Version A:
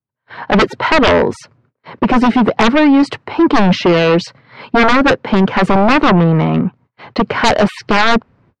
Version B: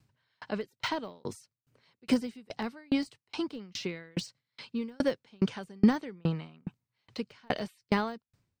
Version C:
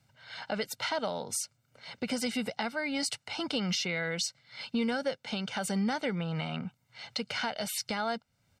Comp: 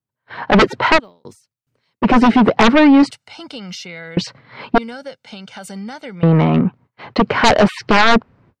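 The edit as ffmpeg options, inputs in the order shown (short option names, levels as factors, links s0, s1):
-filter_complex "[2:a]asplit=2[s0][s1];[0:a]asplit=4[s2][s3][s4][s5];[s2]atrim=end=1[s6];[1:a]atrim=start=0.96:end=2.05[s7];[s3]atrim=start=2.01:end=3.112[s8];[s0]atrim=start=3.108:end=4.172[s9];[s4]atrim=start=4.168:end=4.782[s10];[s1]atrim=start=4.778:end=6.232[s11];[s5]atrim=start=6.228[s12];[s6][s7]acrossfade=d=0.04:c1=tri:c2=tri[s13];[s13][s8]acrossfade=d=0.04:c1=tri:c2=tri[s14];[s14][s9]acrossfade=d=0.004:c1=hsin:c2=hsin[s15];[s15][s10]acrossfade=d=0.004:c1=hsin:c2=hsin[s16];[s16][s11]acrossfade=d=0.004:c1=hsin:c2=hsin[s17];[s17][s12]acrossfade=d=0.004:c1=hsin:c2=hsin"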